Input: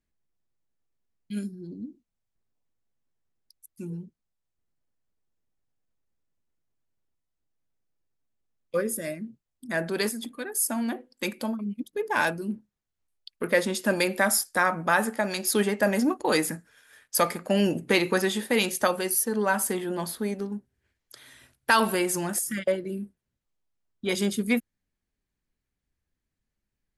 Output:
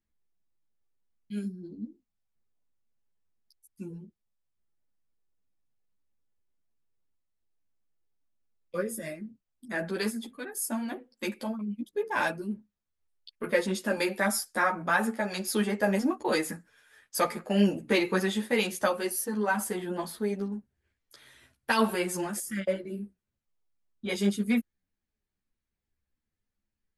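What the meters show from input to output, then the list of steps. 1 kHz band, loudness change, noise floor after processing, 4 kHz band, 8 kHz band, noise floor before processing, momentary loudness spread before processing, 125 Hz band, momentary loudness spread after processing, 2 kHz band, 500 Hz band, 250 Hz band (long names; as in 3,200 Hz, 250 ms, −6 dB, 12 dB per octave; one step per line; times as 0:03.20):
−3.5 dB, −3.5 dB, below −85 dBFS, −4.5 dB, −7.0 dB, −84 dBFS, 14 LU, −1.5 dB, 15 LU, −4.0 dB, −3.0 dB, −1.5 dB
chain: high-shelf EQ 5,400 Hz −5 dB
string-ensemble chorus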